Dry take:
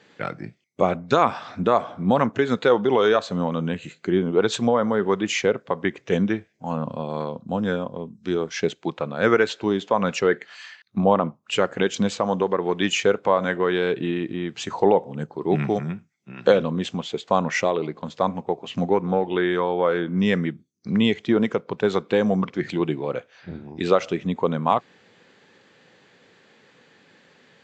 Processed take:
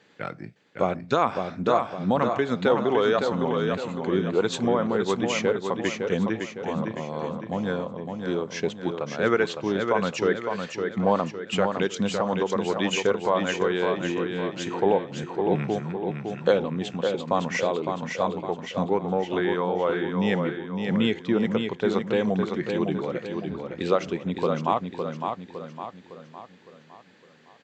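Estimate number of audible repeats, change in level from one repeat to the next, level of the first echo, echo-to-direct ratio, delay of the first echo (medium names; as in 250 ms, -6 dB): 5, -6.5 dB, -5.5 dB, -4.5 dB, 559 ms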